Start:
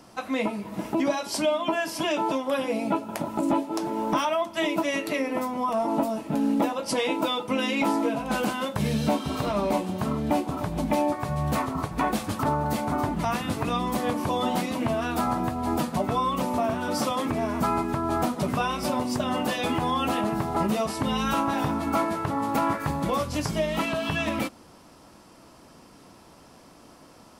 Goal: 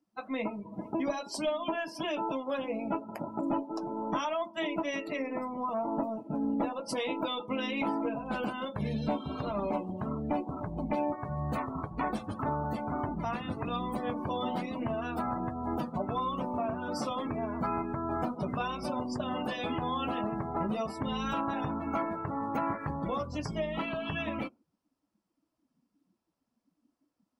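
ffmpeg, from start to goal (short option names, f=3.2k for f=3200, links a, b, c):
-af "aeval=exprs='0.224*(cos(1*acos(clip(val(0)/0.224,-1,1)))-cos(1*PI/2))+0.0316*(cos(2*acos(clip(val(0)/0.224,-1,1)))-cos(2*PI/2))+0.00562*(cos(8*acos(clip(val(0)/0.224,-1,1)))-cos(8*PI/2))':c=same,acrusher=bits=11:mix=0:aa=0.000001,afftdn=nr=28:nf=-36,volume=-7dB"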